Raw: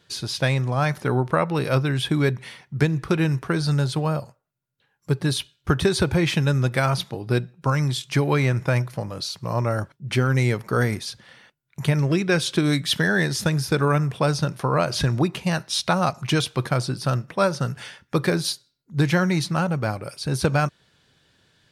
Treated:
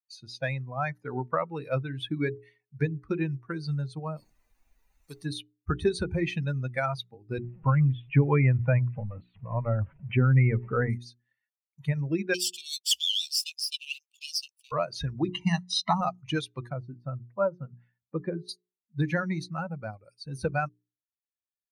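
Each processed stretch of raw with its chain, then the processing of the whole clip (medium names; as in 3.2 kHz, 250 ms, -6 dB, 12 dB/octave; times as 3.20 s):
4.16–5.24 s: high-order bell 1.2 kHz -12 dB 2.5 oct + added noise pink -55 dBFS + spectrum-flattening compressor 2:1
7.38–10.90 s: jump at every zero crossing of -30 dBFS + steep low-pass 3.2 kHz 48 dB/octave + bass shelf 260 Hz +5 dB
12.34–14.72 s: comb filter that takes the minimum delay 0.38 ms + steep high-pass 2.7 kHz 72 dB/octave + waveshaping leveller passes 3
15.28–16.01 s: low-pass 10 kHz + comb 1 ms, depth 87% + three bands compressed up and down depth 40%
16.72–18.49 s: low-pass 2.8 kHz 6 dB/octave + treble shelf 2.1 kHz -10.5 dB
whole clip: expander on every frequency bin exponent 2; treble shelf 10 kHz -11.5 dB; hum notches 60/120/180/240/300/360/420 Hz; trim -1.5 dB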